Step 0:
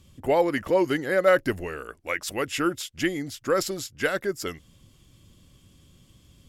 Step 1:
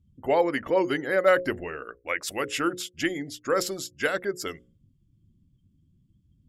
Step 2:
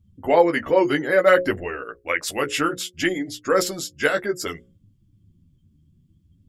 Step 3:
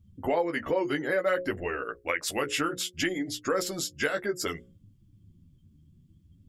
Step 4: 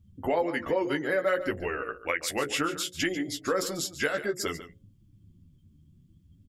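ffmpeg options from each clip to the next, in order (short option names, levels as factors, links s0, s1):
-af "afftdn=nr=30:nf=-48,lowshelf=f=160:g=-7.5,bandreject=f=60:t=h:w=6,bandreject=f=120:t=h:w=6,bandreject=f=180:t=h:w=6,bandreject=f=240:t=h:w=6,bandreject=f=300:t=h:w=6,bandreject=f=360:t=h:w=6,bandreject=f=420:t=h:w=6,bandreject=f=480:t=h:w=6,bandreject=f=540:t=h:w=6"
-af "flanger=delay=9.4:depth=4.8:regen=-16:speed=0.6:shape=triangular,volume=2.66"
-af "acompressor=threshold=0.0447:ratio=3"
-af "aecho=1:1:143:0.211"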